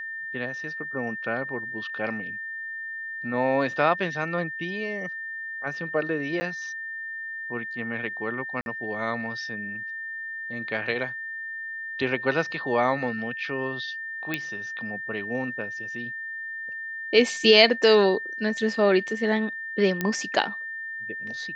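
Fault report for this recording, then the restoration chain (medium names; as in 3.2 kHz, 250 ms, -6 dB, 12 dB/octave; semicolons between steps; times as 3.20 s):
whine 1.8 kHz -32 dBFS
6.40–6.41 s: dropout 10 ms
8.61–8.66 s: dropout 51 ms
14.34 s: pop -13 dBFS
20.01 s: pop -11 dBFS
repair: de-click; band-stop 1.8 kHz, Q 30; interpolate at 6.40 s, 10 ms; interpolate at 8.61 s, 51 ms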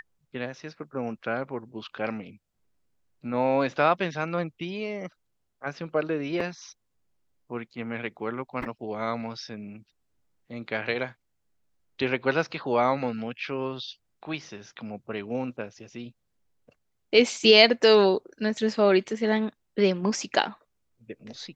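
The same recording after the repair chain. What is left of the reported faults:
nothing left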